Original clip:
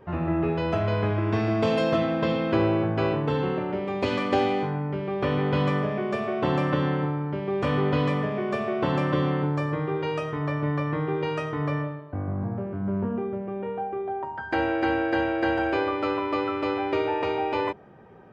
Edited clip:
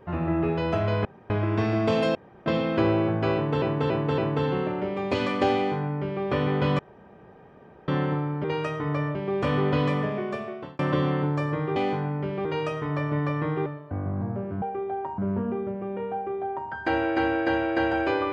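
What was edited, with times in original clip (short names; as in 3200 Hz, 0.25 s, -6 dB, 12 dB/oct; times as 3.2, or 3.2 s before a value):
1.05 insert room tone 0.25 s
1.9–2.21 room tone
3.09–3.37 loop, 4 plays
4.46–5.15 copy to 9.96
5.7–6.79 room tone
8.29–8.99 fade out
11.17–11.88 move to 7.35
13.8–14.36 copy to 12.84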